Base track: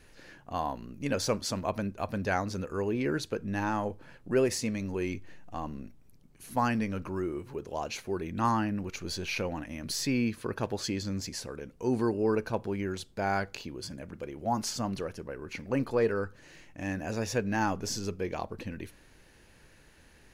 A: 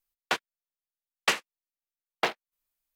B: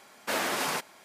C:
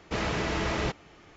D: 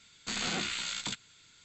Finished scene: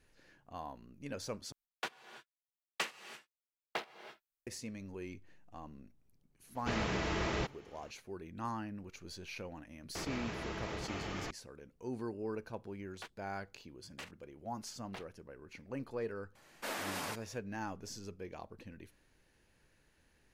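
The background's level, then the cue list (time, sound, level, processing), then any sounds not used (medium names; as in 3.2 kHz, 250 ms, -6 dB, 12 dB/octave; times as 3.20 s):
base track -12.5 dB
1.52 s: replace with A -12 dB + gated-style reverb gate 360 ms rising, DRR 11.5 dB
6.55 s: add C -6 dB
9.95 s: add C -15 dB + level flattener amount 100%
12.71 s: add A -16 dB + level held to a coarse grid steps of 10 dB
16.35 s: add B -10.5 dB
not used: D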